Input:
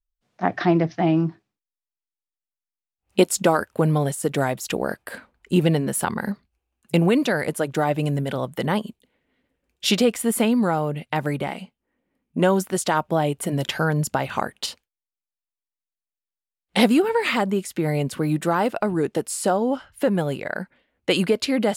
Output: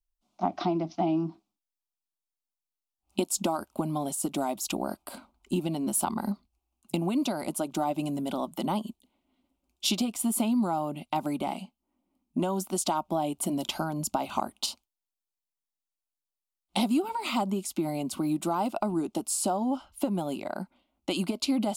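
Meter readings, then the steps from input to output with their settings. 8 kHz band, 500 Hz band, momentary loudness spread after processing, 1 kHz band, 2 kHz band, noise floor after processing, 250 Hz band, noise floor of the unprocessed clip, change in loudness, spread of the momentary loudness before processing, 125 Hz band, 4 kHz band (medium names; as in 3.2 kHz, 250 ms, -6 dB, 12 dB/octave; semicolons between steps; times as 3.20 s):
-2.5 dB, -11.0 dB, 8 LU, -5.5 dB, -15.0 dB, under -85 dBFS, -6.0 dB, under -85 dBFS, -7.5 dB, 10 LU, -12.5 dB, -6.0 dB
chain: compression 6:1, threshold -21 dBFS, peak gain reduction 10 dB; static phaser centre 470 Hz, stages 6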